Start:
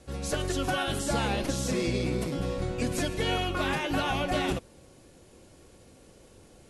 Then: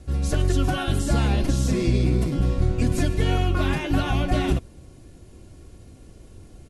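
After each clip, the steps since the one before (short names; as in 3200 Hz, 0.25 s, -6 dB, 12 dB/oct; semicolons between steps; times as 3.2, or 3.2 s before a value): tone controls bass +13 dB, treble 0 dB; comb 2.9 ms, depth 31%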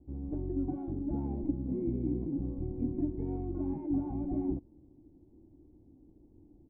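vocal tract filter u; gain -2.5 dB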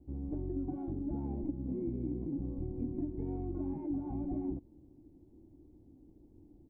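compressor 4:1, threshold -33 dBFS, peak gain reduction 7 dB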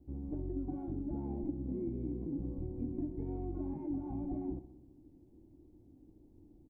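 feedback echo 63 ms, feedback 58%, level -13 dB; gain -1.5 dB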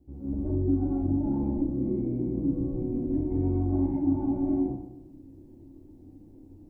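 plate-style reverb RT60 0.72 s, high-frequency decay 0.75×, pre-delay 0.105 s, DRR -9 dB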